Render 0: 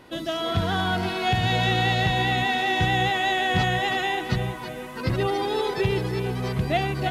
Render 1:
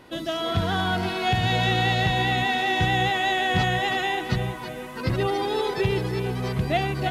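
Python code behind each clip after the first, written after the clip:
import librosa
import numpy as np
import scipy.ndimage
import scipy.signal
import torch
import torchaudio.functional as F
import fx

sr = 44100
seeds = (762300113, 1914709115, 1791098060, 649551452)

y = x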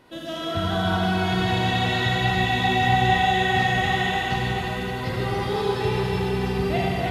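y = fx.echo_alternate(x, sr, ms=286, hz=2100.0, feedback_pct=57, wet_db=-3.5)
y = fx.rev_schroeder(y, sr, rt60_s=3.2, comb_ms=33, drr_db=-3.5)
y = y * librosa.db_to_amplitude(-5.5)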